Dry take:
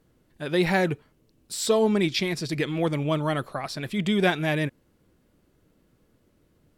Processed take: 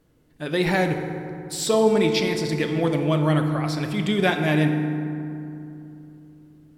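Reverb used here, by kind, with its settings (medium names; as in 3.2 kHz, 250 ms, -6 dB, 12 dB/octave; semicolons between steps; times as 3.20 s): FDN reverb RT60 2.8 s, low-frequency decay 1.4×, high-frequency decay 0.45×, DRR 4.5 dB; trim +1 dB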